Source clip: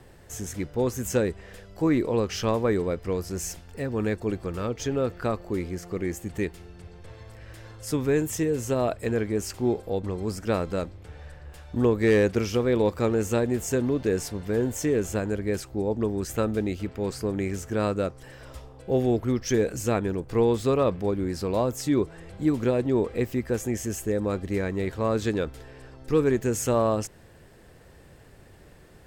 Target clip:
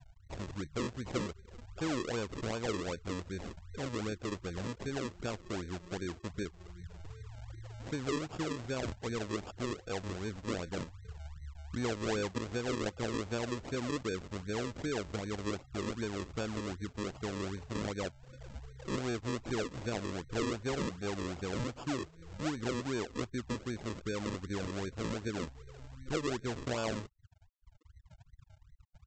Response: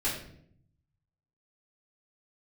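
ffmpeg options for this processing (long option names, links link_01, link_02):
-af "afftfilt=real='re*gte(hypot(re,im),0.0224)':imag='im*gte(hypot(re,im),0.0224)':win_size=1024:overlap=0.75,acompressor=threshold=-43dB:ratio=2,aresample=16000,acrusher=samples=15:mix=1:aa=0.000001:lfo=1:lforange=15:lforate=2.6,aresample=44100"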